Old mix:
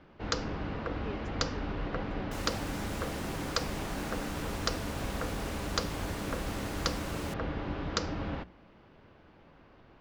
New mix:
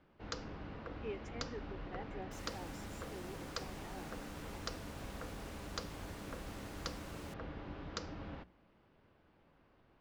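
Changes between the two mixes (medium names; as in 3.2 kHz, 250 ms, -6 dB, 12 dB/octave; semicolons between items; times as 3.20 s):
first sound -11.0 dB; second sound -11.0 dB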